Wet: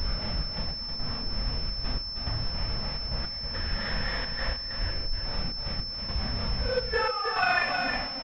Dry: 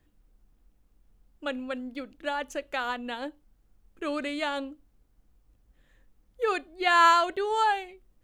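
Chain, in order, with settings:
converter with a step at zero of −28.5 dBFS
elliptic band-stop filter 240–510 Hz
mains-hum notches 60/120/180/240 Hz
downward expander −35 dBFS
in parallel at −8.5 dB: bit reduction 6 bits
on the sum: extreme stretch with random phases 5.2×, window 0.05 s, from 0:05.11
gate pattern "xxx.x..xx" 106 BPM −12 dB
on a send: single-tap delay 317 ms −5.5 dB
on the sum: switching amplifier with a slow clock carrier 5,300 Hz
level +2 dB

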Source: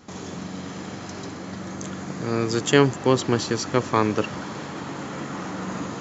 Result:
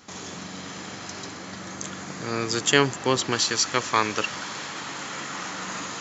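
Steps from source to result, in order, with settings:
tilt shelving filter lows −5.5 dB, about 910 Hz, from 0:03.31 lows −9.5 dB
level −1 dB

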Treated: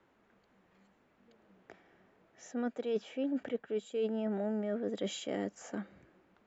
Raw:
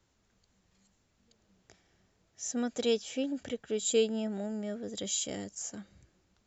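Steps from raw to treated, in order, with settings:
three-way crossover with the lows and the highs turned down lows −18 dB, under 190 Hz, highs −24 dB, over 2,500 Hz
reversed playback
downward compressor 16 to 1, threshold −39 dBFS, peak gain reduction 17.5 dB
reversed playback
level +8.5 dB

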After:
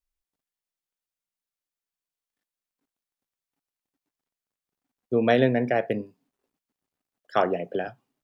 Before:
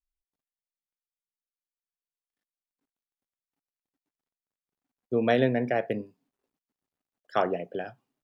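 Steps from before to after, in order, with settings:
0:07.43–0:07.88: multiband upward and downward compressor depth 70%
level +3 dB

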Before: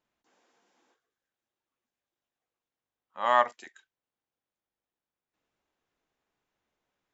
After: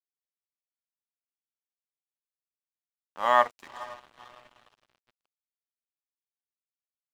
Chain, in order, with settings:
feedback delay with all-pass diffusion 485 ms, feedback 55%, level −16 dB
dead-zone distortion −46.5 dBFS
level +2 dB

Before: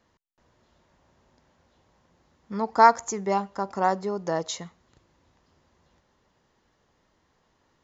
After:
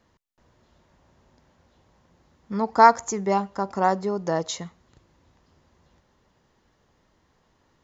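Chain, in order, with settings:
low-shelf EQ 250 Hz +4 dB
level +1.5 dB

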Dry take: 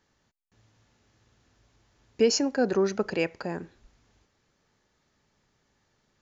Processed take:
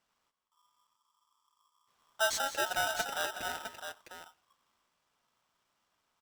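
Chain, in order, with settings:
gain on a spectral selection 0:00.47–0:01.88, 220–5,600 Hz −19 dB
multi-tap delay 162/175/203/361/658 ms −18.5/−14/−16.5/−18/−8 dB
ring modulator with a square carrier 1,100 Hz
level −8.5 dB

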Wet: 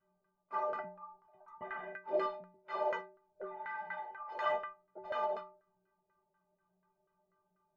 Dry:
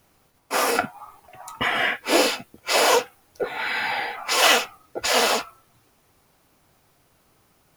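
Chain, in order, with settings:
stiff-string resonator 180 Hz, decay 0.58 s, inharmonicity 0.03
harmonic generator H 3 −22 dB, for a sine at −19 dBFS
auto-filter low-pass saw down 4.1 Hz 580–1,500 Hz

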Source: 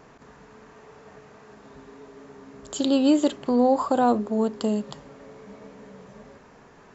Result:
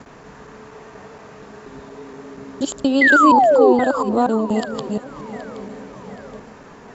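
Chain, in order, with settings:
reversed piece by piece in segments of 237 ms
in parallel at +2 dB: downward compressor, threshold −33 dBFS, peak gain reduction 17 dB
on the sum: sound drawn into the spectrogram fall, 0:03.01–0:03.73, 350–2,100 Hz −14 dBFS
delay that swaps between a low-pass and a high-pass 386 ms, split 1,200 Hz, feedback 67%, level −13.5 dB
level +1.5 dB

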